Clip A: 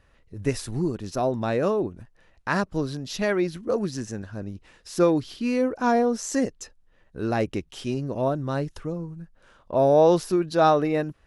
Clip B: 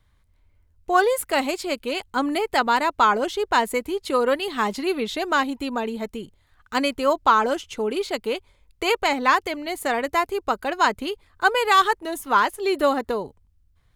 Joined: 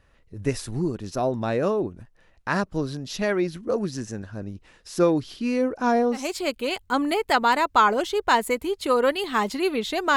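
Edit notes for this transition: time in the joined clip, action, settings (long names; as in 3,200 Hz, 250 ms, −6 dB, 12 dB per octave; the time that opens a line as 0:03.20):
clip A
0:06.22: continue with clip B from 0:01.46, crossfade 0.22 s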